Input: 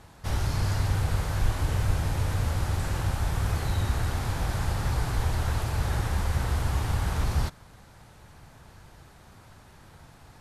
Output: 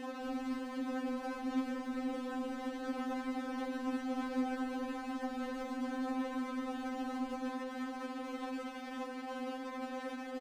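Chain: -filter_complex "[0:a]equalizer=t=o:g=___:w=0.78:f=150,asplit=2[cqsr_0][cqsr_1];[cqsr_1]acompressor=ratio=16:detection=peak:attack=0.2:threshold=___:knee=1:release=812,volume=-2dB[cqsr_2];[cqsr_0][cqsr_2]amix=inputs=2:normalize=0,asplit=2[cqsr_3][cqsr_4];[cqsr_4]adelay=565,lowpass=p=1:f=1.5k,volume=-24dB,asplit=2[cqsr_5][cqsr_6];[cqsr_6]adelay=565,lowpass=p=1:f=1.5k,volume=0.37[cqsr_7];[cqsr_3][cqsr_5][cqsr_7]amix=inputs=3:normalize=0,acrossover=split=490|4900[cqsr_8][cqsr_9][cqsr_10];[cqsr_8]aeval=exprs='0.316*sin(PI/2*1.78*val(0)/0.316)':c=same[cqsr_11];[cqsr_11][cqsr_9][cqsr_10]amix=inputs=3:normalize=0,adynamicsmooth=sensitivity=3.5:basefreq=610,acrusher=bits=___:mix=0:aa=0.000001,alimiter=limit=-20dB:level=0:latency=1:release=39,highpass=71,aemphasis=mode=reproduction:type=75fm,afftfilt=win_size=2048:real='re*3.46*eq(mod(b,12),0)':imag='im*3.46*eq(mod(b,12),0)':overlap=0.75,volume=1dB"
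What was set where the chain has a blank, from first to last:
7.5, -31dB, 5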